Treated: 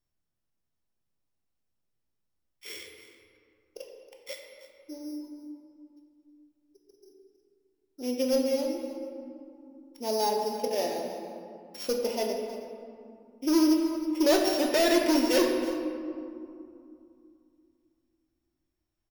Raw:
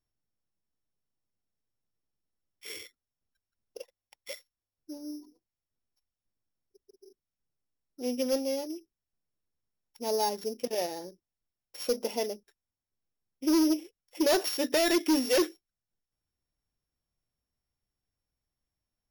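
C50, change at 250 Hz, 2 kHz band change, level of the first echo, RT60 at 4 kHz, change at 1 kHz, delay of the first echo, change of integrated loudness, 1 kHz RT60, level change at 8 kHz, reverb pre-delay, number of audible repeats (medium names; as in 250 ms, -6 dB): 3.0 dB, +3.5 dB, +2.0 dB, -15.0 dB, 1.2 s, +3.5 dB, 319 ms, +1.5 dB, 2.6 s, 0.0 dB, 3 ms, 1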